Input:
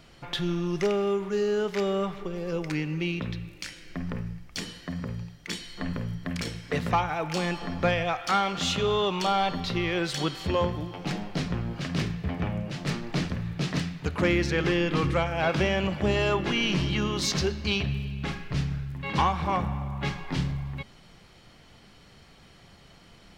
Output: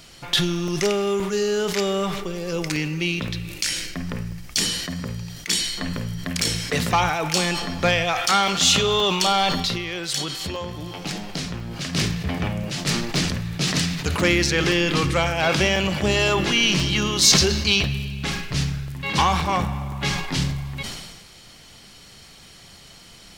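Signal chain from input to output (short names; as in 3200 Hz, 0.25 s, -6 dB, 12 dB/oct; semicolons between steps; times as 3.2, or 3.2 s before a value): bell 8200 Hz +3.5 dB 2.3 oct; 9.65–11.93 compressor, threshold -31 dBFS, peak gain reduction 10 dB; high shelf 3600 Hz +12 dB; crackling interface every 0.52 s, samples 64, zero, from 0.68; sustainer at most 41 dB/s; gain +3 dB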